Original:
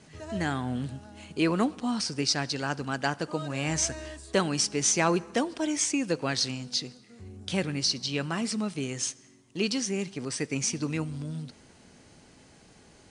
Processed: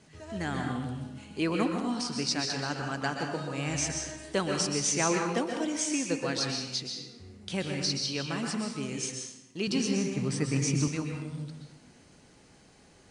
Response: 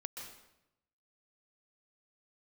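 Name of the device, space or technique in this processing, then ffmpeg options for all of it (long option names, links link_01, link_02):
bathroom: -filter_complex "[1:a]atrim=start_sample=2205[link_01];[0:a][link_01]afir=irnorm=-1:irlink=0,asettb=1/sr,asplit=3[link_02][link_03][link_04];[link_02]atrim=end=9.674[link_05];[link_03]atrim=start=9.67:end=10.88,asetpts=PTS-STARTPTS,afade=type=in:duration=0.004:curve=qsin,afade=type=out:start_time=1.206:duration=0.004:curve=qsin,equalizer=frequency=125:width_type=o:width=1:gain=12,equalizer=frequency=250:width_type=o:width=1:gain=3,equalizer=frequency=1000:width_type=o:width=1:gain=4[link_06];[link_04]atrim=start=10.876[link_07];[link_05][link_06]acrossfade=duration=0.004:curve1=hsin:curve2=qsin[link_08];[link_08][link_07]acrossfade=duration=0.004:curve1=qsin:curve2=hsin"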